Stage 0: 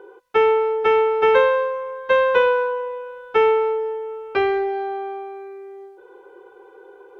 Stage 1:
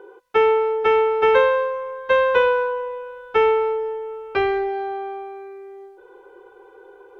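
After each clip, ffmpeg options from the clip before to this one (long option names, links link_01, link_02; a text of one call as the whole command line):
ffmpeg -i in.wav -af "asubboost=boost=2:cutoff=130" out.wav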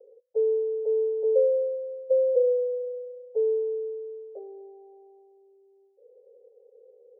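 ffmpeg -i in.wav -af "asuperpass=centerf=530:order=8:qfactor=2.7,volume=-3.5dB" out.wav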